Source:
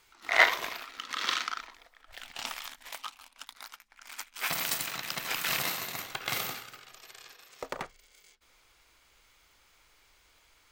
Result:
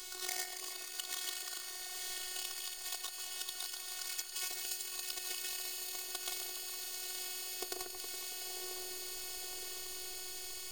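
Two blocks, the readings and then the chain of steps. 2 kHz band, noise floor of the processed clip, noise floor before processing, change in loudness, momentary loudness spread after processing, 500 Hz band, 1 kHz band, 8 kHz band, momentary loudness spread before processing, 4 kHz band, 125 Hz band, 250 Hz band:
−15.5 dB, −46 dBFS, −65 dBFS, −8.5 dB, 3 LU, −10.0 dB, −14.0 dB, +2.0 dB, 22 LU, −4.0 dB, below −15 dB, −5.5 dB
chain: each half-wave held at its own peak
feedback delay with all-pass diffusion 990 ms, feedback 41%, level −12 dB
phases set to zero 367 Hz
high-shelf EQ 2,400 Hz +11.5 dB
downward compressor 12 to 1, threshold −44 dBFS, peak gain reduction 37 dB
octave-band graphic EQ 125/500/1,000/2,000/4,000/8,000 Hz −7/+7/−3/−5/+3/+4 dB
delay that swaps between a low-pass and a high-pass 139 ms, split 2,000 Hz, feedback 79%, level −5 dB
level +6.5 dB

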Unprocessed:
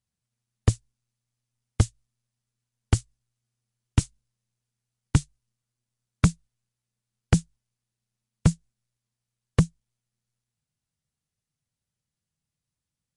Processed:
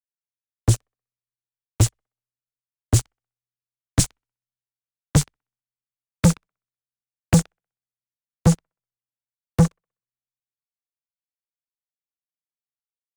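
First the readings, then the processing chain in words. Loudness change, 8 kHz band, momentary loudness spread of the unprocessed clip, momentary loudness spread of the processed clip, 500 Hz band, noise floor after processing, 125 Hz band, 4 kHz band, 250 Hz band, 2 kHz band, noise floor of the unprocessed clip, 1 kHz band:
+4.5 dB, +10.0 dB, 4 LU, 7 LU, +7.5 dB, below −85 dBFS, +4.5 dB, +7.0 dB, +6.0 dB, +3.0 dB, below −85 dBFS, +5.0 dB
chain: delay with a band-pass on its return 63 ms, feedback 51%, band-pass 1,100 Hz, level −23 dB
leveller curve on the samples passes 5
multiband upward and downward expander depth 40%
level −4.5 dB

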